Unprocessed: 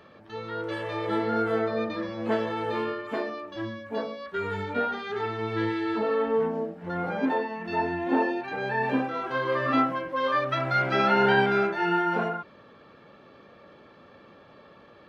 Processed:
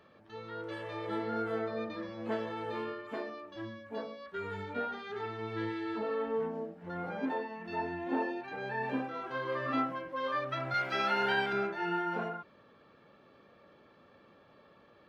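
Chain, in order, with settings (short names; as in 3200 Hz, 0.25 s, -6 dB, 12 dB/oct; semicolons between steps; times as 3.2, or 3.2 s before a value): 10.74–11.53 tilt +2.5 dB/oct; gain -8.5 dB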